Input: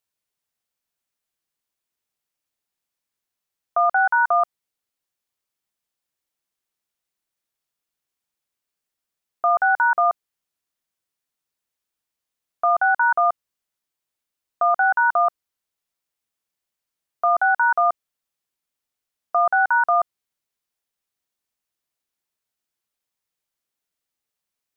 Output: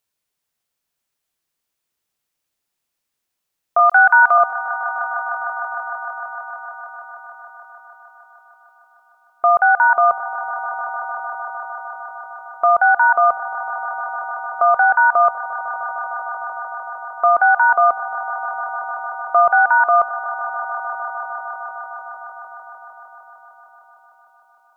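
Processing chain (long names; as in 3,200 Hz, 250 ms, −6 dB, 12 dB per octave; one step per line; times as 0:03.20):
0:03.79–0:04.38: tilt shelving filter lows −9.5 dB, about 870 Hz
on a send: echo that builds up and dies away 152 ms, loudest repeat 5, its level −16.5 dB
on the sum: level +5 dB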